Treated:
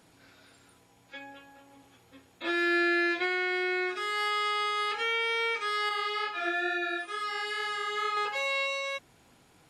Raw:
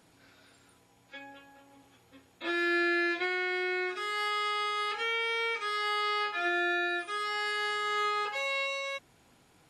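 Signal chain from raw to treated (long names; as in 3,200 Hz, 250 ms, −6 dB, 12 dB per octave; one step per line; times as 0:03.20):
0:05.89–0:08.17: chorus effect 2.2 Hz, delay 17.5 ms, depth 3.8 ms
level +2 dB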